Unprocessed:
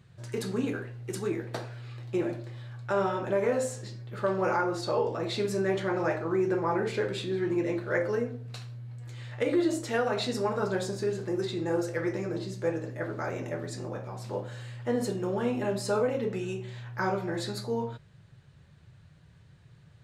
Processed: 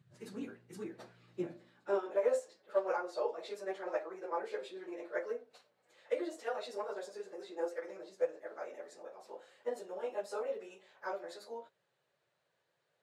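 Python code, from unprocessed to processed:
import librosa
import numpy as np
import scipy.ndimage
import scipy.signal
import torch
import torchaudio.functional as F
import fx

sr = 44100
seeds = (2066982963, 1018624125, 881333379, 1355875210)

y = fx.stretch_vocoder_free(x, sr, factor=0.65)
y = fx.filter_sweep_highpass(y, sr, from_hz=140.0, to_hz=530.0, start_s=1.48, end_s=2.21, q=2.0)
y = fx.upward_expand(y, sr, threshold_db=-33.0, expansion=1.5)
y = y * librosa.db_to_amplitude(-5.0)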